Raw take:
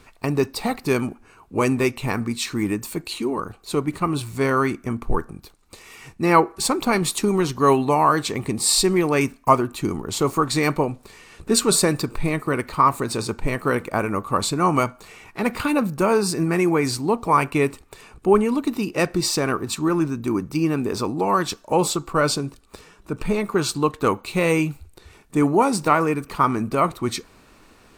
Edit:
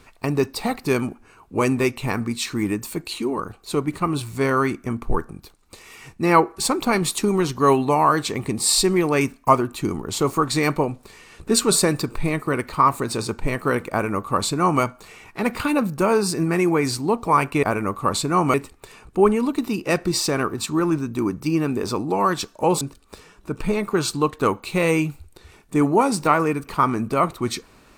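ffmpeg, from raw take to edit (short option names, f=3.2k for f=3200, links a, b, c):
-filter_complex "[0:a]asplit=4[a][b][c][d];[a]atrim=end=17.632[e];[b]atrim=start=13.908:end=14.822[f];[c]atrim=start=17.628:end=21.902[g];[d]atrim=start=22.418[h];[e][f]acrossfade=d=0.004:c1=hsin:c2=hsin[i];[i][g]acrossfade=d=0.004:c1=hsin:c2=hsin[j];[j][h]acrossfade=d=0.004:c1=hsin:c2=hsin"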